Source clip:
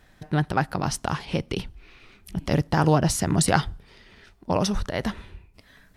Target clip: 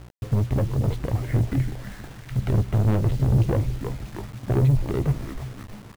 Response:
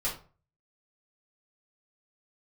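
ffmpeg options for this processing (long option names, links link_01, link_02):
-filter_complex "[0:a]agate=range=-41dB:threshold=-49dB:ratio=16:detection=peak,adynamicequalizer=threshold=0.00316:dfrequency=3000:dqfactor=3.1:tfrequency=3000:tqfactor=3.1:attack=5:release=100:ratio=0.375:range=3:mode=boostabove:tftype=bell,asetrate=30296,aresample=44100,atempo=1.45565,asplit=5[link_01][link_02][link_03][link_04][link_05];[link_02]adelay=319,afreqshift=-77,volume=-17.5dB[link_06];[link_03]adelay=638,afreqshift=-154,volume=-23.2dB[link_07];[link_04]adelay=957,afreqshift=-231,volume=-28.9dB[link_08];[link_05]adelay=1276,afreqshift=-308,volume=-34.5dB[link_09];[link_01][link_06][link_07][link_08][link_09]amix=inputs=5:normalize=0,acrossover=split=440[link_10][link_11];[link_11]acompressor=threshold=-41dB:ratio=6[link_12];[link_10][link_12]amix=inputs=2:normalize=0,aeval=exprs='val(0)+0.00355*(sin(2*PI*60*n/s)+sin(2*PI*2*60*n/s)/2+sin(2*PI*3*60*n/s)/3+sin(2*PI*4*60*n/s)/4+sin(2*PI*5*60*n/s)/5)':channel_layout=same,adynamicsmooth=sensitivity=3.5:basefreq=1300,asoftclip=type=tanh:threshold=-28dB,equalizer=frequency=120:width_type=o:width=0.29:gain=9.5,bandreject=frequency=60:width_type=h:width=6,bandreject=frequency=120:width_type=h:width=6,bandreject=frequency=180:width_type=h:width=6,bandreject=frequency=240:width_type=h:width=6,asplit=2[link_13][link_14];[link_14]adelay=15,volume=-12dB[link_15];[link_13][link_15]amix=inputs=2:normalize=0,acrusher=bits=8:mix=0:aa=0.000001,volume=9dB"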